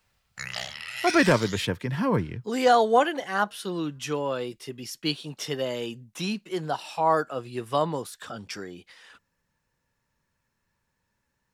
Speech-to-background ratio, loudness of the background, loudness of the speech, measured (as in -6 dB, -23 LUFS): 6.5 dB, -33.0 LUFS, -26.5 LUFS